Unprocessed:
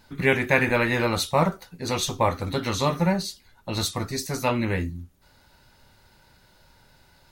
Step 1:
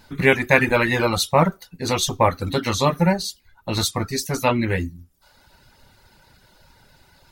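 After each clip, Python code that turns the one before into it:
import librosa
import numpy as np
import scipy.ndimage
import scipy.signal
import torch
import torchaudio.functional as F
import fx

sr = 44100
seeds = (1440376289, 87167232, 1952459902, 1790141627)

y = fx.dereverb_blind(x, sr, rt60_s=0.71)
y = y * 10.0 ** (5.0 / 20.0)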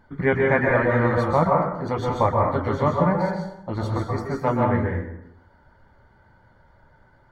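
y = scipy.signal.savgol_filter(x, 41, 4, mode='constant')
y = fx.rev_plate(y, sr, seeds[0], rt60_s=0.84, hf_ratio=0.65, predelay_ms=115, drr_db=-0.5)
y = y * 10.0 ** (-3.5 / 20.0)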